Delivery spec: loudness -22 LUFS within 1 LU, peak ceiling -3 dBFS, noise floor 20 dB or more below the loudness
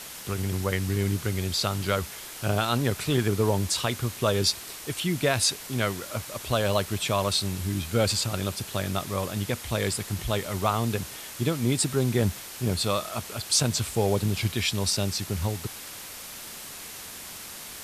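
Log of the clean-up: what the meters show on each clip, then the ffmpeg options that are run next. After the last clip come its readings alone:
noise floor -41 dBFS; noise floor target -47 dBFS; loudness -27.0 LUFS; peak level -9.5 dBFS; loudness target -22.0 LUFS
-> -af "afftdn=nr=6:nf=-41"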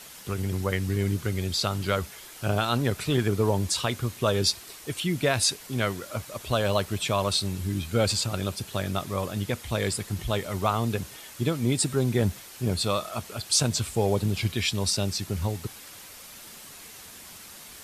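noise floor -46 dBFS; noise floor target -47 dBFS
-> -af "afftdn=nr=6:nf=-46"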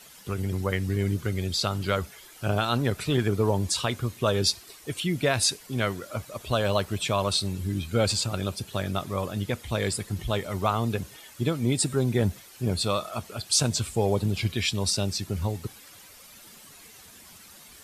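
noise floor -50 dBFS; loudness -27.5 LUFS; peak level -9.5 dBFS; loudness target -22.0 LUFS
-> -af "volume=1.88"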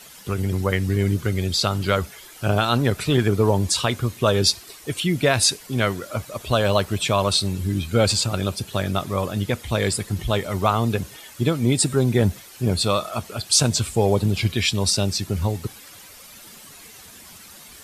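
loudness -22.0 LUFS; peak level -4.0 dBFS; noise floor -44 dBFS

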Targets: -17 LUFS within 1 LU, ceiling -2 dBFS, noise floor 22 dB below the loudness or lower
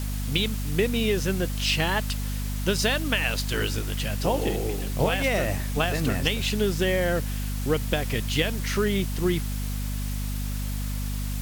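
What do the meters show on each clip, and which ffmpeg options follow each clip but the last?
hum 50 Hz; highest harmonic 250 Hz; hum level -27 dBFS; noise floor -29 dBFS; noise floor target -49 dBFS; loudness -26.5 LUFS; peak level -9.0 dBFS; loudness target -17.0 LUFS
-> -af "bandreject=f=50:t=h:w=4,bandreject=f=100:t=h:w=4,bandreject=f=150:t=h:w=4,bandreject=f=200:t=h:w=4,bandreject=f=250:t=h:w=4"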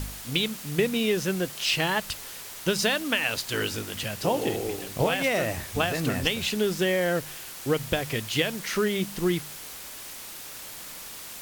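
hum not found; noise floor -41 dBFS; noise floor target -49 dBFS
-> -af "afftdn=nr=8:nf=-41"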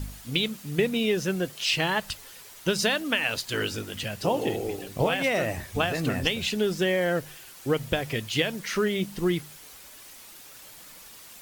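noise floor -47 dBFS; noise floor target -49 dBFS
-> -af "afftdn=nr=6:nf=-47"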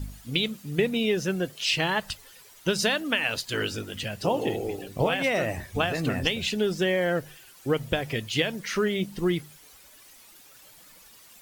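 noise floor -52 dBFS; loudness -27.0 LUFS; peak level -9.0 dBFS; loudness target -17.0 LUFS
-> -af "volume=3.16,alimiter=limit=0.794:level=0:latency=1"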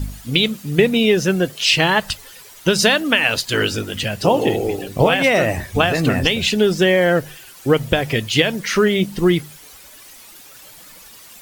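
loudness -17.0 LUFS; peak level -2.0 dBFS; noise floor -42 dBFS

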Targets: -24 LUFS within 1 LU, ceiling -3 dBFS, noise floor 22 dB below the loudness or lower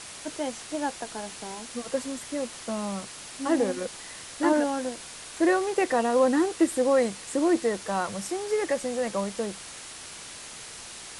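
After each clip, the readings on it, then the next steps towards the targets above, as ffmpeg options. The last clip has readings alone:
noise floor -42 dBFS; noise floor target -50 dBFS; loudness -27.5 LUFS; peak level -10.5 dBFS; loudness target -24.0 LUFS
-> -af "afftdn=nr=8:nf=-42"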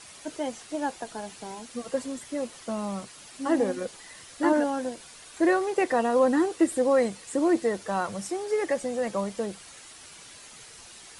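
noise floor -48 dBFS; noise floor target -50 dBFS
-> -af "afftdn=nr=6:nf=-48"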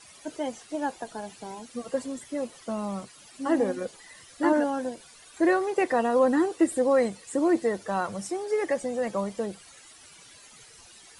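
noise floor -52 dBFS; loudness -27.5 LUFS; peak level -11.0 dBFS; loudness target -24.0 LUFS
-> -af "volume=1.5"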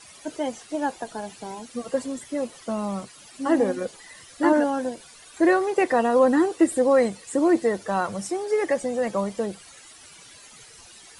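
loudness -24.0 LUFS; peak level -7.5 dBFS; noise floor -48 dBFS

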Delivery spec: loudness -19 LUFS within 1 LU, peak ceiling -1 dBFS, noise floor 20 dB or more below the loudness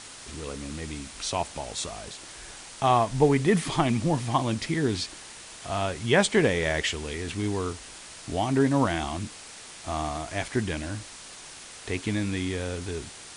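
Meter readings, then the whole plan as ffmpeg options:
noise floor -45 dBFS; noise floor target -48 dBFS; loudness -27.5 LUFS; peak level -8.5 dBFS; loudness target -19.0 LUFS
-> -af "afftdn=nr=6:nf=-45"
-af "volume=2.66,alimiter=limit=0.891:level=0:latency=1"

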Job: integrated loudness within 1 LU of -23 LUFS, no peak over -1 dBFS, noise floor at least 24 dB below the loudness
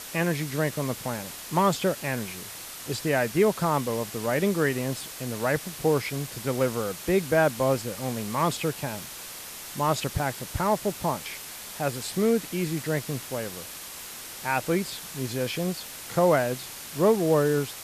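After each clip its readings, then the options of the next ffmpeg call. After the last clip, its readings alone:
noise floor -40 dBFS; noise floor target -52 dBFS; loudness -27.5 LUFS; peak level -10.5 dBFS; loudness target -23.0 LUFS
-> -af "afftdn=nr=12:nf=-40"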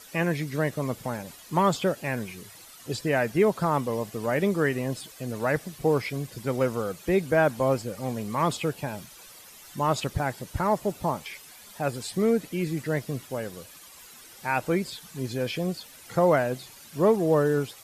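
noise floor -49 dBFS; noise floor target -51 dBFS
-> -af "afftdn=nr=6:nf=-49"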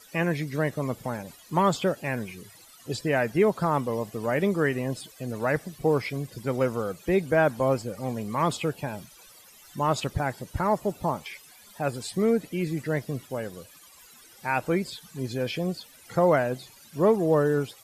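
noise floor -53 dBFS; loudness -27.5 LUFS; peak level -10.5 dBFS; loudness target -23.0 LUFS
-> -af "volume=1.68"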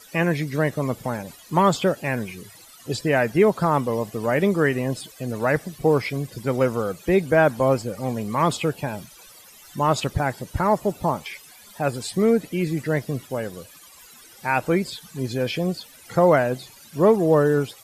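loudness -23.0 LUFS; peak level -6.0 dBFS; noise floor -48 dBFS

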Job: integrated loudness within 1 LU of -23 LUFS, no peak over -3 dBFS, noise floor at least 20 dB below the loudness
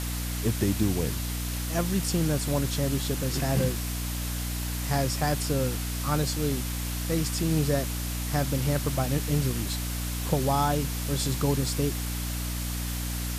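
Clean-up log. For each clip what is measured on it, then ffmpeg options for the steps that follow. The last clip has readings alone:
hum 60 Hz; highest harmonic 300 Hz; hum level -30 dBFS; noise floor -31 dBFS; noise floor target -48 dBFS; loudness -28.0 LUFS; peak level -12.0 dBFS; loudness target -23.0 LUFS
-> -af "bandreject=f=60:t=h:w=4,bandreject=f=120:t=h:w=4,bandreject=f=180:t=h:w=4,bandreject=f=240:t=h:w=4,bandreject=f=300:t=h:w=4"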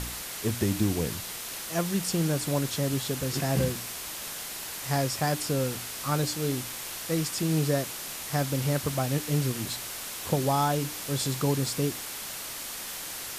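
hum not found; noise floor -38 dBFS; noise floor target -49 dBFS
-> -af "afftdn=nr=11:nf=-38"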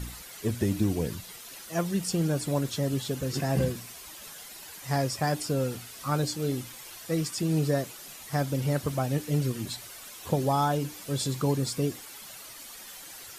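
noise floor -45 dBFS; noise floor target -50 dBFS
-> -af "afftdn=nr=6:nf=-45"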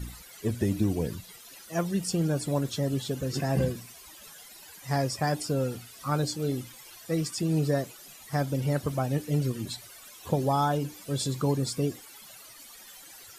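noise floor -49 dBFS; noise floor target -50 dBFS
-> -af "afftdn=nr=6:nf=-49"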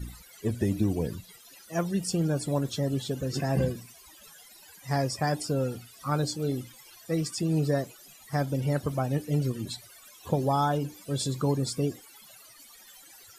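noise floor -53 dBFS; loudness -29.5 LUFS; peak level -14.0 dBFS; loudness target -23.0 LUFS
-> -af "volume=2.11"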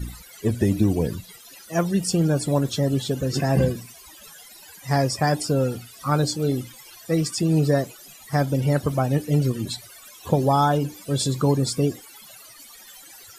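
loudness -23.0 LUFS; peak level -7.5 dBFS; noise floor -46 dBFS

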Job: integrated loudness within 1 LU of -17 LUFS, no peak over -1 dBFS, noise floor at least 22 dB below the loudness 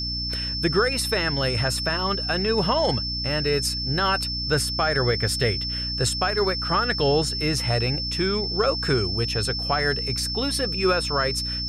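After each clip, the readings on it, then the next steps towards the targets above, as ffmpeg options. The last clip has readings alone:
hum 60 Hz; highest harmonic 300 Hz; hum level -30 dBFS; steady tone 5.3 kHz; tone level -27 dBFS; loudness -23.0 LUFS; peak level -9.0 dBFS; loudness target -17.0 LUFS
-> -af "bandreject=f=60:t=h:w=4,bandreject=f=120:t=h:w=4,bandreject=f=180:t=h:w=4,bandreject=f=240:t=h:w=4,bandreject=f=300:t=h:w=4"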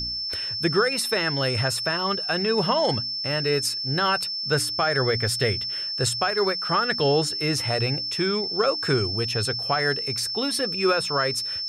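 hum not found; steady tone 5.3 kHz; tone level -27 dBFS
-> -af "bandreject=f=5300:w=30"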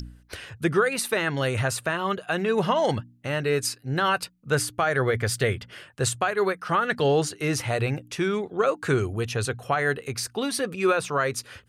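steady tone not found; loudness -25.5 LUFS; peak level -11.0 dBFS; loudness target -17.0 LUFS
-> -af "volume=2.66"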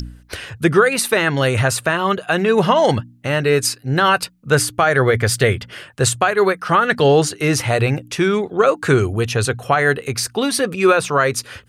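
loudness -17.0 LUFS; peak level -2.5 dBFS; noise floor -47 dBFS

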